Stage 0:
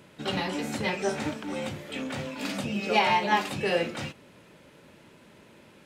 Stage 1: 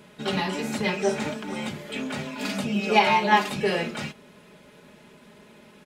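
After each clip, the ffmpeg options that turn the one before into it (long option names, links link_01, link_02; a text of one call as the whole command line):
ffmpeg -i in.wav -af "aecho=1:1:4.8:0.58,volume=1.5dB" out.wav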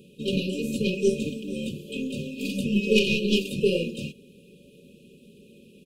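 ffmpeg -i in.wav -af "equalizer=frequency=5300:width_type=o:width=1.4:gain=-7.5,aeval=exprs='0.447*(cos(1*acos(clip(val(0)/0.447,-1,1)))-cos(1*PI/2))+0.0112*(cos(5*acos(clip(val(0)/0.447,-1,1)))-cos(5*PI/2))+0.0141*(cos(6*acos(clip(val(0)/0.447,-1,1)))-cos(6*PI/2))+0.0316*(cos(7*acos(clip(val(0)/0.447,-1,1)))-cos(7*PI/2))':channel_layout=same,afftfilt=real='re*(1-between(b*sr/4096,580,2400))':imag='im*(1-between(b*sr/4096,580,2400))':win_size=4096:overlap=0.75,volume=5dB" out.wav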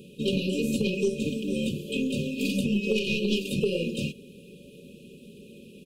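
ffmpeg -i in.wav -af "acompressor=threshold=-26dB:ratio=10,volume=4dB" out.wav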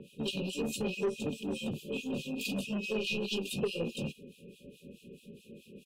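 ffmpeg -i in.wav -filter_complex "[0:a]acrossover=split=2100[link_01][link_02];[link_01]aeval=exprs='val(0)*(1-1/2+1/2*cos(2*PI*4.7*n/s))':channel_layout=same[link_03];[link_02]aeval=exprs='val(0)*(1-1/2-1/2*cos(2*PI*4.7*n/s))':channel_layout=same[link_04];[link_03][link_04]amix=inputs=2:normalize=0,acrossover=split=500|3400[link_05][link_06][link_07];[link_05]asoftclip=type=tanh:threshold=-32dB[link_08];[link_08][link_06][link_07]amix=inputs=3:normalize=0" out.wav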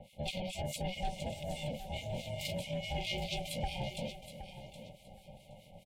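ffmpeg -i in.wav -af "aeval=exprs='val(0)*sin(2*PI*370*n/s)':channel_layout=same,asuperstop=centerf=1200:order=4:qfactor=1.1,aecho=1:1:769|1538|2307:0.266|0.0585|0.0129" out.wav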